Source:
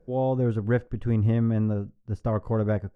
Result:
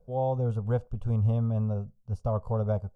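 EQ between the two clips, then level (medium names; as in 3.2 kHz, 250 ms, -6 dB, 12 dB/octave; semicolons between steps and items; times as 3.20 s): peaking EQ 3 kHz -3 dB 1.8 oct; static phaser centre 760 Hz, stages 4; 0.0 dB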